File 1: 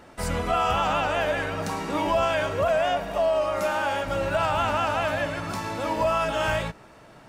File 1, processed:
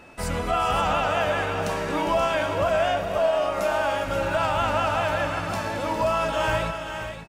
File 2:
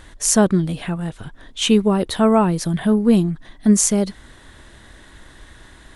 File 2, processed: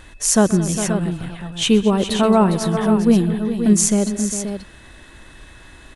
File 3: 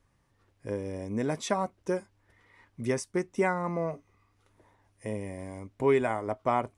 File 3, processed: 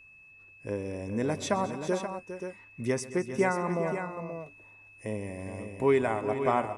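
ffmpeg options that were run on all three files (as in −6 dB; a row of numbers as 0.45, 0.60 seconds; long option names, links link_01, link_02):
-af "aecho=1:1:128|222|406|530:0.126|0.141|0.282|0.376,aeval=exprs='val(0)+0.00251*sin(2*PI*2600*n/s)':channel_layout=same"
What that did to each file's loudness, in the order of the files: +1.0, +0.5, 0.0 LU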